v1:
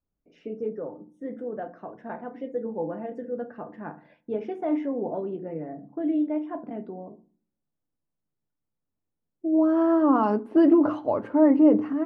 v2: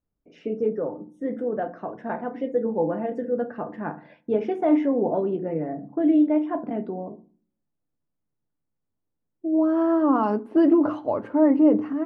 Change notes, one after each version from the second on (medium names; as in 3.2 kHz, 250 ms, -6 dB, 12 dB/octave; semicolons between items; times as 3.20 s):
first voice +6.5 dB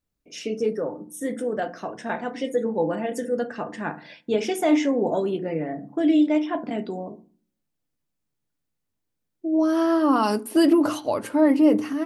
master: remove low-pass 1.2 kHz 12 dB/octave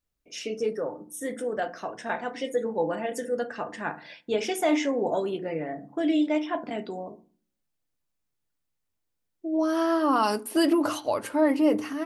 master: add peaking EQ 200 Hz -7 dB 2.2 oct